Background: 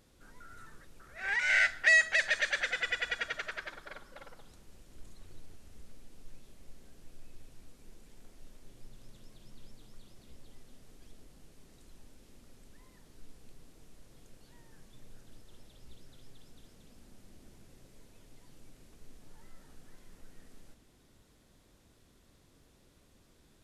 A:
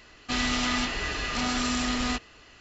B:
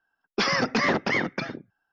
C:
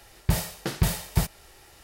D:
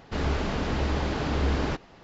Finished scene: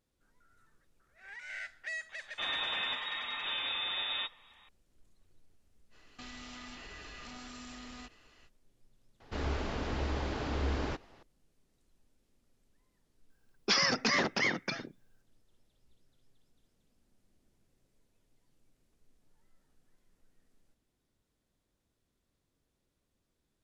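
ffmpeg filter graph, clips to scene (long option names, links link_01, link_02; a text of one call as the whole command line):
ffmpeg -i bed.wav -i cue0.wav -i cue1.wav -i cue2.wav -i cue3.wav -filter_complex "[1:a]asplit=2[link_01][link_02];[0:a]volume=-16.5dB[link_03];[link_01]lowpass=frequency=3200:width_type=q:width=0.5098,lowpass=frequency=3200:width_type=q:width=0.6013,lowpass=frequency=3200:width_type=q:width=0.9,lowpass=frequency=3200:width_type=q:width=2.563,afreqshift=-3800[link_04];[link_02]acompressor=threshold=-34dB:ratio=6:attack=3.2:release=140:knee=1:detection=peak[link_05];[4:a]equalizer=frequency=170:width_type=o:width=0.37:gain=-9.5[link_06];[2:a]crystalizer=i=3.5:c=0[link_07];[link_04]atrim=end=2.6,asetpts=PTS-STARTPTS,volume=-7.5dB,afade=type=in:duration=0.004:curve=hsin,afade=type=out:start_time=2.596:duration=0.004:curve=hsin,adelay=2090[link_08];[link_05]atrim=end=2.6,asetpts=PTS-STARTPTS,volume=-10.5dB,afade=type=in:duration=0.05,afade=type=out:start_time=2.55:duration=0.05,adelay=5900[link_09];[link_06]atrim=end=2.03,asetpts=PTS-STARTPTS,volume=-7dB,afade=type=in:duration=0.004:curve=hsin,afade=type=out:start_time=2.026:duration=0.004:curve=hsin,adelay=9200[link_10];[link_07]atrim=end=1.92,asetpts=PTS-STARTPTS,volume=-8.5dB,afade=type=in:duration=0.004:curve=hsin,afade=type=out:start_time=1.916:duration=0.004:curve=hsin,adelay=13300[link_11];[link_03][link_08][link_09][link_10][link_11]amix=inputs=5:normalize=0" out.wav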